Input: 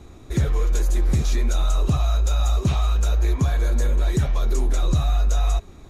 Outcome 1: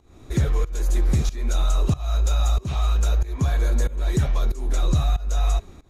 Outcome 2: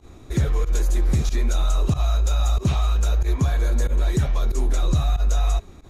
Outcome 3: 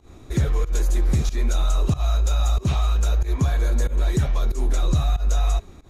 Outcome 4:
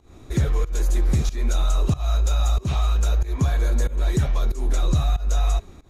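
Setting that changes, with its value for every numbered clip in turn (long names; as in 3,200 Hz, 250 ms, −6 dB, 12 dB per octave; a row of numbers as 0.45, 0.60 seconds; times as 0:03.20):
fake sidechain pumping, release: 342, 75, 144, 228 milliseconds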